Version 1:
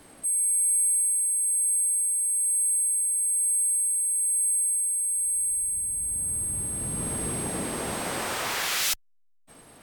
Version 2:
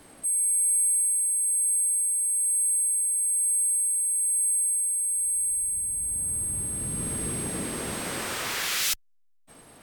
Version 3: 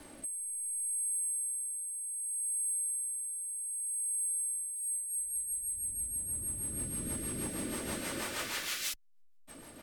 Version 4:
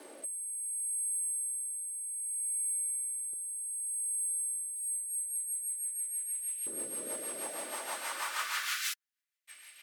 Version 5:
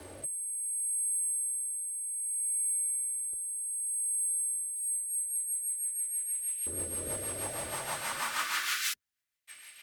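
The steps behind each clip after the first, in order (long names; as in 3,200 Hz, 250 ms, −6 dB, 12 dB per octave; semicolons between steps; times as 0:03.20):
dynamic equaliser 780 Hz, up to −6 dB, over −49 dBFS, Q 1.3
comb filter 3.4 ms, depth 34%; downward compressor 5 to 1, threshold −35 dBFS, peak gain reduction 12.5 dB; rotating-speaker cabinet horn 0.65 Hz, later 6.3 Hz, at 0:04.48; level +2.5 dB
auto-filter high-pass saw up 0.3 Hz 410–2,700 Hz
sub-octave generator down 2 octaves, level +3 dB; level +2.5 dB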